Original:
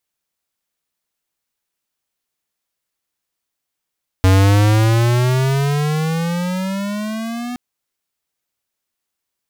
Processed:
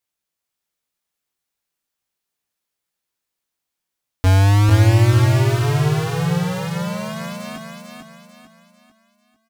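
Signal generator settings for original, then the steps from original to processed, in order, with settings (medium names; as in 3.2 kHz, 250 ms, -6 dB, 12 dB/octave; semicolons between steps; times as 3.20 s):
gliding synth tone square, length 3.32 s, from 92.9 Hz, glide +17 st, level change -15.5 dB, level -10 dB
chorus 0.38 Hz, delay 17 ms, depth 6.6 ms; feedback delay 446 ms, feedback 40%, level -4.5 dB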